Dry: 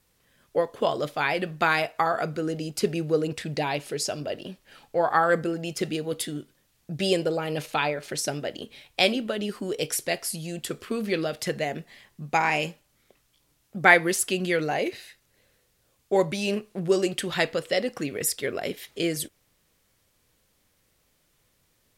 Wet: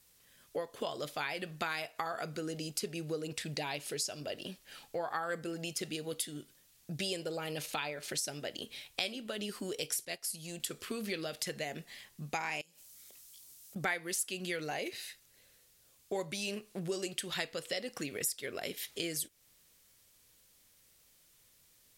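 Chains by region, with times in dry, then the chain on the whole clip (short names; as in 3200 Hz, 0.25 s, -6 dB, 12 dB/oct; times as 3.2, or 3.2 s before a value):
10.05–10.6 transient shaper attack -7 dB, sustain -2 dB + upward expander, over -47 dBFS
12.61–13.76 tone controls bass -2 dB, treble +11 dB + compressor 20:1, threshold -50 dBFS
whole clip: high shelf 2600 Hz +11.5 dB; compressor 3:1, threshold -31 dBFS; gain -5.5 dB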